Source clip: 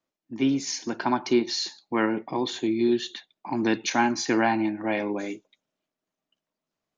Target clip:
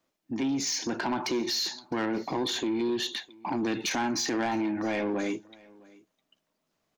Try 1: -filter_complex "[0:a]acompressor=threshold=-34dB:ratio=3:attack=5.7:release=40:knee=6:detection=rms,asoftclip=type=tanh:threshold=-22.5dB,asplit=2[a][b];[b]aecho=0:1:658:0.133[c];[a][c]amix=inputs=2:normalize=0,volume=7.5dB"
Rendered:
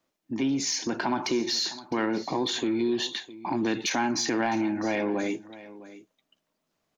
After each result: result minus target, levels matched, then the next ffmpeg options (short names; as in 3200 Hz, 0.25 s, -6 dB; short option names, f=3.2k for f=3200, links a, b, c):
soft clip: distortion -12 dB; echo-to-direct +7 dB
-filter_complex "[0:a]acompressor=threshold=-34dB:ratio=3:attack=5.7:release=40:knee=6:detection=rms,asoftclip=type=tanh:threshold=-30.5dB,asplit=2[a][b];[b]aecho=0:1:658:0.133[c];[a][c]amix=inputs=2:normalize=0,volume=7.5dB"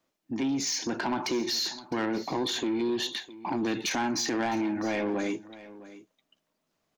echo-to-direct +7 dB
-filter_complex "[0:a]acompressor=threshold=-34dB:ratio=3:attack=5.7:release=40:knee=6:detection=rms,asoftclip=type=tanh:threshold=-30.5dB,asplit=2[a][b];[b]aecho=0:1:658:0.0596[c];[a][c]amix=inputs=2:normalize=0,volume=7.5dB"